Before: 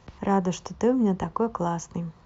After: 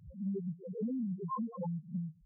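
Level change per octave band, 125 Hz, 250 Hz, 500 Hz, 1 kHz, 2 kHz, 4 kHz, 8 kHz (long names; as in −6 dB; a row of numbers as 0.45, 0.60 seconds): −8.5 dB, −10.5 dB, −17.0 dB, −15.0 dB, below −40 dB, below −40 dB, can't be measured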